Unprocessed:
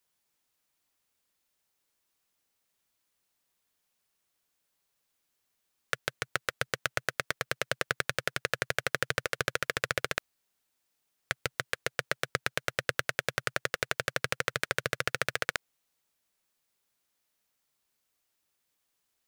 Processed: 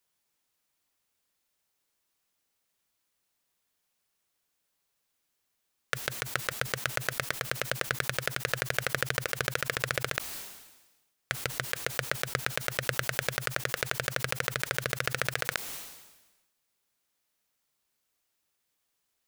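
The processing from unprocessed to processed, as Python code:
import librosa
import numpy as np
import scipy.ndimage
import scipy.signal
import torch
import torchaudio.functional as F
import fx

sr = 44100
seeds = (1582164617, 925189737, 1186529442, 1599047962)

y = fx.sustainer(x, sr, db_per_s=51.0)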